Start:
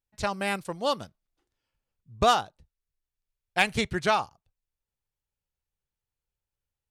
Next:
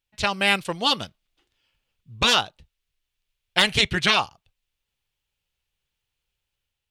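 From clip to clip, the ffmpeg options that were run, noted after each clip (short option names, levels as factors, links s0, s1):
-af "dynaudnorm=f=130:g=7:m=1.41,equalizer=f=3000:t=o:w=1.2:g=12,afftfilt=real='re*lt(hypot(re,im),0.562)':imag='im*lt(hypot(re,im),0.562)':win_size=1024:overlap=0.75,volume=1.33"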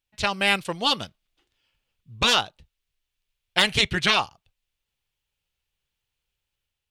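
-af "aeval=exprs='0.891*(cos(1*acos(clip(val(0)/0.891,-1,1)))-cos(1*PI/2))+0.0112*(cos(6*acos(clip(val(0)/0.891,-1,1)))-cos(6*PI/2))':c=same,volume=0.891"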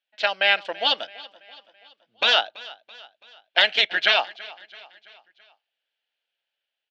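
-af "highpass=f=350:w=0.5412,highpass=f=350:w=1.3066,equalizer=f=380:t=q:w=4:g=-9,equalizer=f=660:t=q:w=4:g=8,equalizer=f=1100:t=q:w=4:g=-9,equalizer=f=1600:t=q:w=4:g=7,equalizer=f=3100:t=q:w=4:g=4,lowpass=f=4500:w=0.5412,lowpass=f=4500:w=1.3066,aecho=1:1:332|664|996|1328:0.0944|0.0491|0.0255|0.0133"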